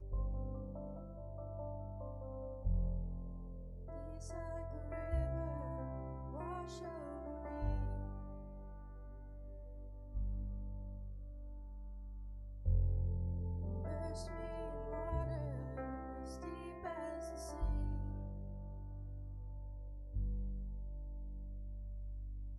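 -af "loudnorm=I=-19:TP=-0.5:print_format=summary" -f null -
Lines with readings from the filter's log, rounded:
Input Integrated:    -45.0 LUFS
Input True Peak:     -23.5 dBTP
Input LRA:             5.2 LU
Input Threshold:     -55.0 LUFS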